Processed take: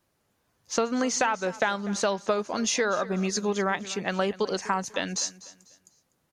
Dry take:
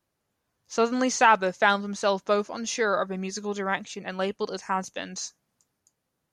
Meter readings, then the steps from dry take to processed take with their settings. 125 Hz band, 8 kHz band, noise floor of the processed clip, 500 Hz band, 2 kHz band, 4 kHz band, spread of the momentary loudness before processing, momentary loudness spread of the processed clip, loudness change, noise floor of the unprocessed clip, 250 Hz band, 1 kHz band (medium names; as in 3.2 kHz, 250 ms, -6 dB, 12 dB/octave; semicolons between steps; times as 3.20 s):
+2.5 dB, +4.0 dB, -73 dBFS, -1.0 dB, -3.0 dB, +1.5 dB, 14 LU, 5 LU, -1.5 dB, -80 dBFS, +1.0 dB, -4.0 dB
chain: compression 10:1, threshold -28 dBFS, peak gain reduction 15.5 dB; on a send: feedback delay 247 ms, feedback 33%, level -18 dB; on the sum: trim +6 dB